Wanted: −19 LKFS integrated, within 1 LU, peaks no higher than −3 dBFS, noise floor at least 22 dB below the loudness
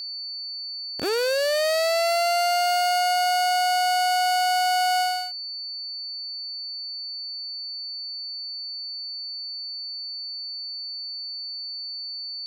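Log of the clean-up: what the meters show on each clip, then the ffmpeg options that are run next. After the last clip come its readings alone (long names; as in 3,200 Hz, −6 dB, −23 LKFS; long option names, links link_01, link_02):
interfering tone 4,500 Hz; level of the tone −31 dBFS; integrated loudness −25.0 LKFS; sample peak −15.5 dBFS; target loudness −19.0 LKFS
→ -af "bandreject=frequency=4500:width=30"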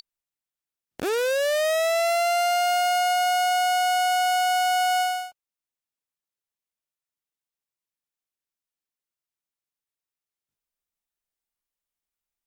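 interfering tone none found; integrated loudness −22.5 LKFS; sample peak −17.0 dBFS; target loudness −19.0 LKFS
→ -af "volume=3.5dB"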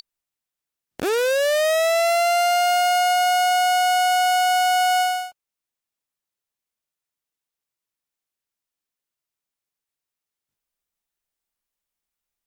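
integrated loudness −19.0 LKFS; sample peak −13.5 dBFS; background noise floor −88 dBFS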